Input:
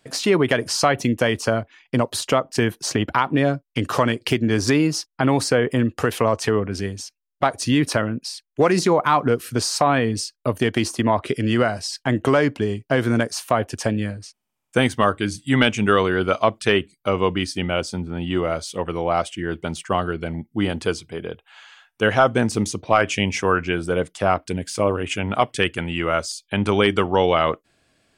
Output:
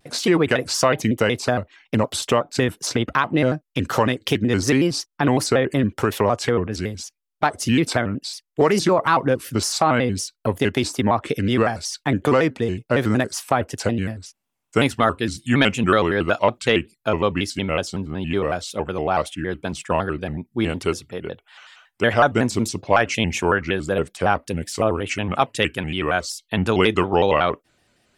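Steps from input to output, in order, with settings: vibrato with a chosen wave square 5.4 Hz, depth 160 cents

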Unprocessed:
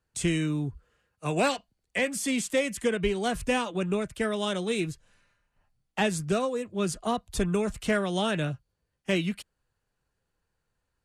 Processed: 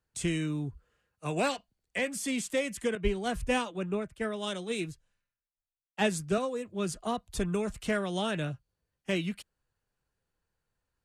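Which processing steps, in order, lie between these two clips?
2.95–6.38 s: three bands expanded up and down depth 100%; trim -4 dB

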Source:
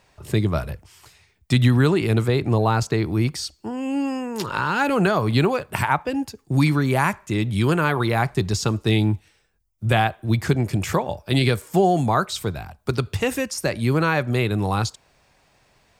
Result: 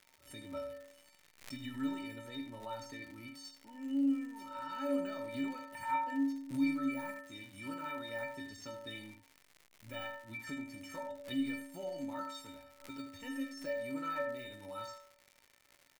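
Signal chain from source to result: de-esser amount 65%; inharmonic resonator 270 Hz, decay 0.85 s, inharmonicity 0.03; on a send: delay 79 ms -9 dB; on the sum: crackle 170 per s -48 dBFS; peaking EQ 2.1 kHz +6 dB 0.44 oct; swell ahead of each attack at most 140 dB/s

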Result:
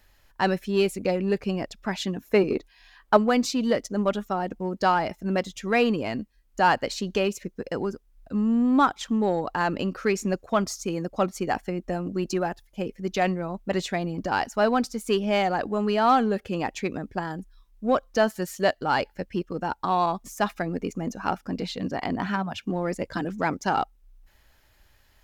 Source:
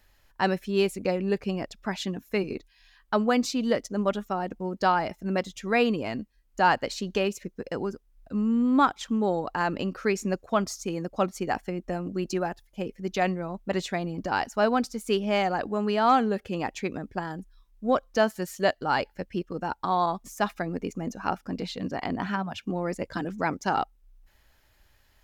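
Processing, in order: 2.23–3.17 s: peaking EQ 620 Hz +8 dB 2.9 oct; in parallel at -10 dB: overload inside the chain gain 24 dB

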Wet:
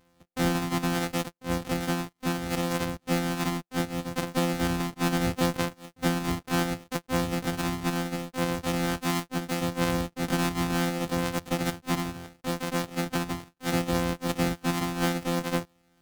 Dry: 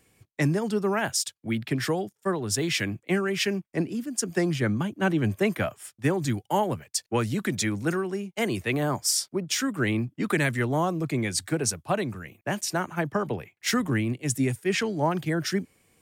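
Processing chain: sorted samples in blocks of 256 samples; harmony voices +7 st -3 dB; trim -3.5 dB

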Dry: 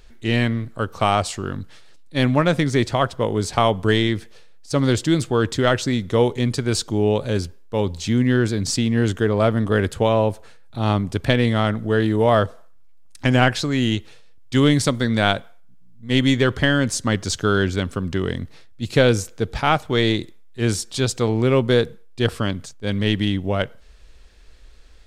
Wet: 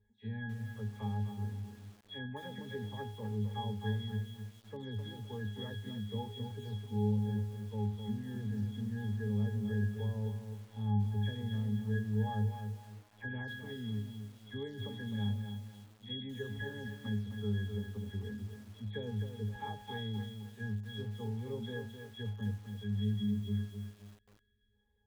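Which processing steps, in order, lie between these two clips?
delay that grows with frequency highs early, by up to 166 ms; pitch-class resonator G#, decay 0.44 s; spectral selection erased 22.83–24.74 s, 450–1300 Hz; in parallel at +1.5 dB: compression 16:1, threshold -37 dBFS, peak gain reduction 18 dB; on the sum: bit-crushed delay 258 ms, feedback 35%, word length 8-bit, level -7 dB; trim -7.5 dB

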